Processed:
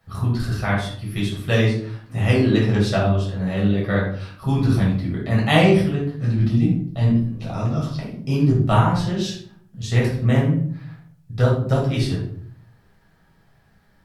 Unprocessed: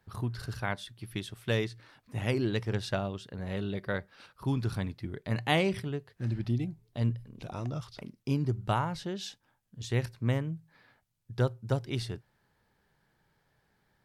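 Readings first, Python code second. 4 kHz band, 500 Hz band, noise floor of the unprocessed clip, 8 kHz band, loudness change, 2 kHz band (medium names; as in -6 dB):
+9.5 dB, +11.5 dB, -74 dBFS, no reading, +13.0 dB, +10.5 dB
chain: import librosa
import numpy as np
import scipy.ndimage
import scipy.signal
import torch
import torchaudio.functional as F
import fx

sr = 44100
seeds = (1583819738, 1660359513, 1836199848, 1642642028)

y = fx.room_shoebox(x, sr, seeds[0], volume_m3=700.0, walls='furnished', distance_m=6.5)
y = y * librosa.db_to_amplitude(2.5)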